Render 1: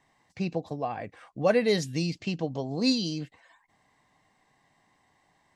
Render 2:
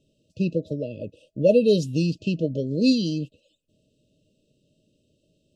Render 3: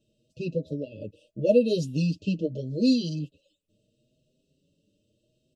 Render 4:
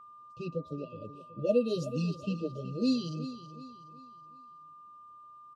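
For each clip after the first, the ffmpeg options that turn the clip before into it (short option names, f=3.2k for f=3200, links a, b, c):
-af "afftfilt=real='re*(1-between(b*sr/4096,640,2500))':imag='im*(1-between(b*sr/4096,640,2500))':win_size=4096:overlap=0.75,highshelf=f=2.7k:g=-9.5,volume=6.5dB"
-filter_complex "[0:a]asplit=2[a][b];[b]adelay=6.4,afreqshift=0.78[c];[a][c]amix=inputs=2:normalize=1,volume=-1dB"
-af "aecho=1:1:372|744|1116|1488:0.224|0.0851|0.0323|0.0123,aeval=exprs='val(0)+0.00708*sin(2*PI*1200*n/s)':c=same,volume=-6.5dB"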